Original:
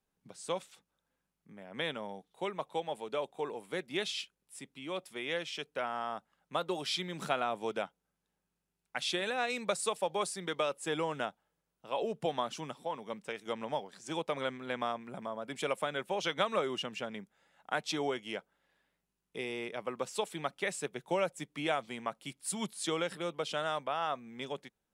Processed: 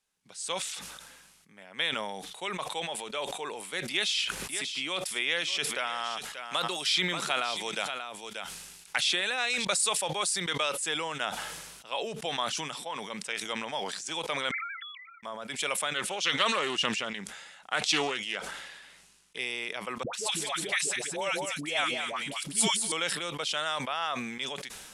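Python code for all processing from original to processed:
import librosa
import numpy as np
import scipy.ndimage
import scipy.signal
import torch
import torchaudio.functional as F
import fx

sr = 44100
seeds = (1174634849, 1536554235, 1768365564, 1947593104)

y = fx.chain(x, sr, fx.echo_single(ms=584, db=-14.5),
    fx.band_squash(depth_pct=70), at=(3.91, 9.65))
y = fx.chain(y, sr, fx.sine_speech(),
    fx.cheby_ripple_highpass(hz=1300.0, ripple_db=9),
    fx.notch(hz=1900.0, q=7.8), at=(14.51, 15.23))
y = fx.chain(y, sr, fx.lowpass(hz=11000.0, slope=24),
    fx.doppler_dist(depth_ms=0.2), at=(15.94, 19.38))
y = fx.chain(y, sr, fx.dispersion(late='highs', ms=106.0, hz=660.0),
    fx.echo_single(ms=206, db=-7.0), at=(20.03, 22.92))
y = scipy.signal.sosfilt(scipy.signal.butter(4, 11000.0, 'lowpass', fs=sr, output='sos'), y)
y = fx.tilt_shelf(y, sr, db=-9.0, hz=1100.0)
y = fx.sustainer(y, sr, db_per_s=36.0)
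y = F.gain(torch.from_numpy(y), 2.0).numpy()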